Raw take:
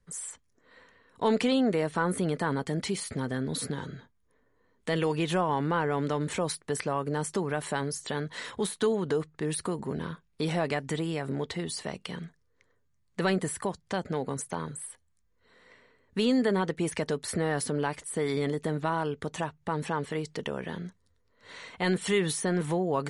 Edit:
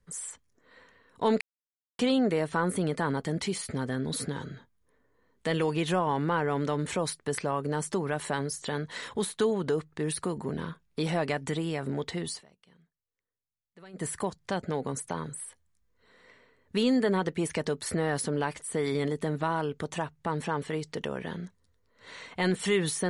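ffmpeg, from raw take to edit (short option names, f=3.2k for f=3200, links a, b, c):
-filter_complex "[0:a]asplit=4[a][b][c][d];[a]atrim=end=1.41,asetpts=PTS-STARTPTS,afade=t=out:st=1.406:d=0.004:c=hsin,apad=pad_dur=0.58[e];[b]atrim=start=1.41:end=11.86,asetpts=PTS-STARTPTS,afade=t=in:d=0.004:c=hsin,afade=t=out:st=10.32:d=0.13:silence=0.0668344[f];[c]atrim=start=11.86:end=13.35,asetpts=PTS-STARTPTS,volume=-23.5dB[g];[d]atrim=start=13.35,asetpts=PTS-STARTPTS,afade=t=in:d=0.13:silence=0.0668344[h];[e][f][g][h]concat=n=4:v=0:a=1"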